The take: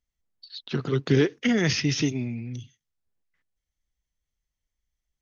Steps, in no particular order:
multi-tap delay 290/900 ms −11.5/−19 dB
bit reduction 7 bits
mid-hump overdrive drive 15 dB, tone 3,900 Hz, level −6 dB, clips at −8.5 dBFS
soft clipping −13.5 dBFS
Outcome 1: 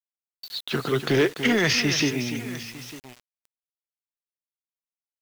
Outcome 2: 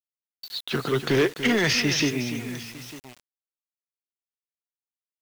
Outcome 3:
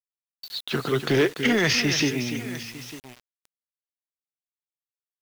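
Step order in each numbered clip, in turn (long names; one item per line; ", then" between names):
soft clipping, then multi-tap delay, then mid-hump overdrive, then bit reduction
mid-hump overdrive, then soft clipping, then multi-tap delay, then bit reduction
multi-tap delay, then soft clipping, then mid-hump overdrive, then bit reduction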